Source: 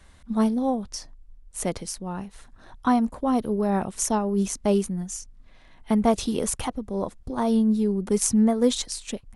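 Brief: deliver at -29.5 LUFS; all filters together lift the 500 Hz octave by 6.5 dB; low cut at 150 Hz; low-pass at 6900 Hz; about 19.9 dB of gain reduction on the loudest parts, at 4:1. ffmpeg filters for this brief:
-af "highpass=150,lowpass=6.9k,equalizer=f=500:t=o:g=8,acompressor=threshold=-36dB:ratio=4,volume=8.5dB"

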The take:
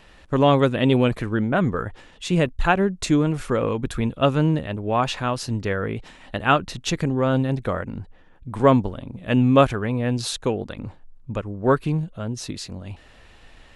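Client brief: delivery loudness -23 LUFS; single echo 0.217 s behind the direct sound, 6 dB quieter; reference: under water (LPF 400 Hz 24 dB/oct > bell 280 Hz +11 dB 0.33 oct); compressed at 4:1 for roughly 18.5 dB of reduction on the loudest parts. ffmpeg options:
-af "acompressor=threshold=-33dB:ratio=4,lowpass=f=400:w=0.5412,lowpass=f=400:w=1.3066,equalizer=f=280:t=o:w=0.33:g=11,aecho=1:1:217:0.501,volume=10dB"

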